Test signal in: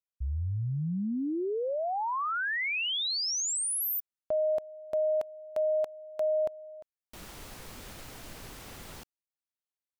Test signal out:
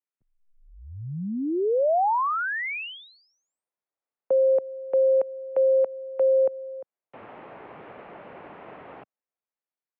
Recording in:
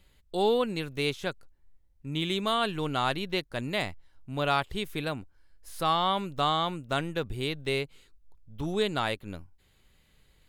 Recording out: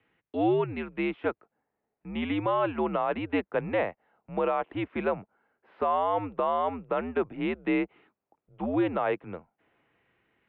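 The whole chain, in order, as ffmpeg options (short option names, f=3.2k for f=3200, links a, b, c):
-filter_complex "[0:a]acrossover=split=550|1000[a][b][c];[b]dynaudnorm=f=300:g=7:m=13.5dB[d];[a][d][c]amix=inputs=3:normalize=0,alimiter=limit=-16dB:level=0:latency=1:release=83,highpass=f=220:t=q:w=0.5412,highpass=f=220:t=q:w=1.307,lowpass=f=2.7k:t=q:w=0.5176,lowpass=f=2.7k:t=q:w=0.7071,lowpass=f=2.7k:t=q:w=1.932,afreqshift=-90"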